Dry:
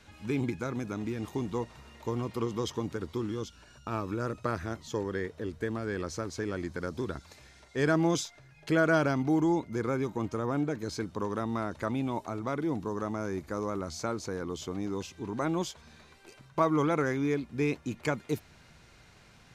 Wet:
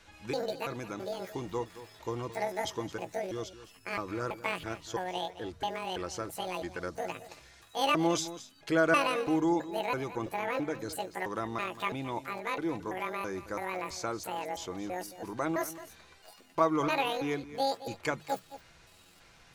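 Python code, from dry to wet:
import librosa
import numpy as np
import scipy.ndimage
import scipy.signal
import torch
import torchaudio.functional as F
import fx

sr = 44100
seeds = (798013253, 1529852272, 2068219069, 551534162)

p1 = fx.pitch_trill(x, sr, semitones=10.5, every_ms=331)
p2 = fx.peak_eq(p1, sr, hz=180.0, db=-8.5, octaves=1.5)
p3 = fx.hum_notches(p2, sr, base_hz=50, count=3)
p4 = p3 + 0.3 * np.pad(p3, (int(6.0 * sr / 1000.0), 0))[:len(p3)]
y = p4 + fx.echo_single(p4, sr, ms=219, db=-14.5, dry=0)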